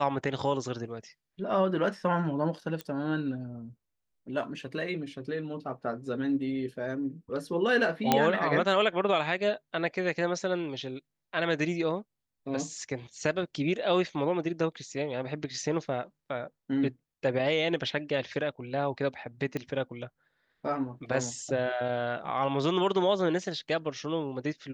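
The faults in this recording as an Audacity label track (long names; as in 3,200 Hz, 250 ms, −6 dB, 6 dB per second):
2.810000	2.810000	click −22 dBFS
8.120000	8.120000	click −7 dBFS
19.570000	19.570000	click −20 dBFS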